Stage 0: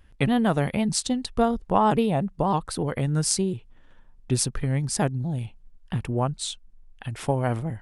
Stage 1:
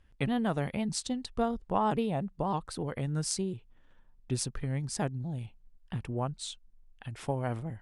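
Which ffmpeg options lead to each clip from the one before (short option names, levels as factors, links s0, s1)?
-af "lowpass=10000,volume=0.398"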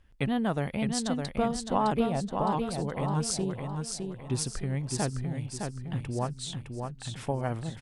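-af "aecho=1:1:611|1222|1833|2444|3055:0.562|0.231|0.0945|0.0388|0.0159,volume=1.19"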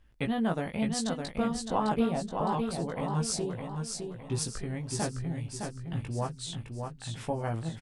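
-filter_complex "[0:a]asplit=2[s0][s1];[s1]adelay=18,volume=0.631[s2];[s0][s2]amix=inputs=2:normalize=0,volume=0.75"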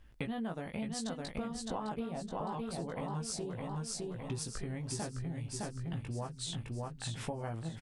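-af "acompressor=threshold=0.0112:ratio=6,volume=1.41"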